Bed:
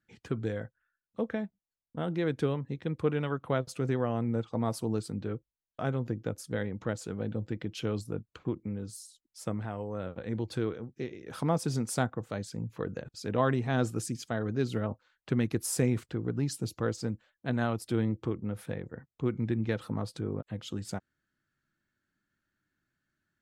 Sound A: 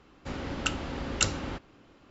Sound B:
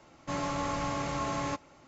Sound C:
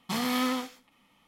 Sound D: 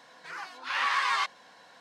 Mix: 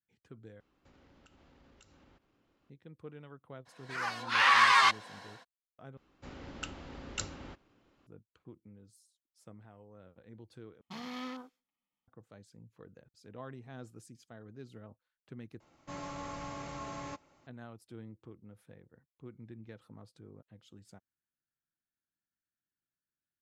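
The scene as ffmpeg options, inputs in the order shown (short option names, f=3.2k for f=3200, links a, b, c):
-filter_complex "[1:a]asplit=2[a][b];[0:a]volume=-19dB[c];[a]acompressor=threshold=-43dB:ratio=6:attack=3.2:release=140:knee=1:detection=peak[d];[4:a]dynaudnorm=f=110:g=5:m=12dB[e];[3:a]afwtdn=0.0112[f];[c]asplit=5[g][h][i][j][k];[g]atrim=end=0.604[l];[d]atrim=end=2.1,asetpts=PTS-STARTPTS,volume=-16.5dB[m];[h]atrim=start=2.696:end=5.974[n];[b]atrim=end=2.1,asetpts=PTS-STARTPTS,volume=-11.5dB[o];[i]atrim=start=8.066:end=10.814[p];[f]atrim=end=1.27,asetpts=PTS-STARTPTS,volume=-13.5dB[q];[j]atrim=start=12.076:end=15.604[r];[2:a]atrim=end=1.87,asetpts=PTS-STARTPTS,volume=-9.5dB[s];[k]atrim=start=17.466[t];[e]atrim=end=1.8,asetpts=PTS-STARTPTS,volume=-7dB,afade=t=in:d=0.02,afade=t=out:st=1.78:d=0.02,adelay=160965S[u];[l][m]acrossfade=d=0.004:c1=hsin:c2=hsin[v];[v][n]acrossfade=d=0.004:c1=hsin:c2=hsin[w];[w][o]acrossfade=d=0.004:c1=hsin:c2=hsin[x];[x][p]acrossfade=d=0.004:c1=hsin:c2=hsin[y];[y][q]acrossfade=d=0.004:c1=hsin:c2=hsin[z];[z][r]acrossfade=d=0.004:c1=hsin:c2=hsin[aa];[aa][s]acrossfade=d=0.004:c1=hsin:c2=hsin[ab];[ab][t]acrossfade=d=0.004:c1=hsin:c2=hsin[ac];[ac][u]amix=inputs=2:normalize=0"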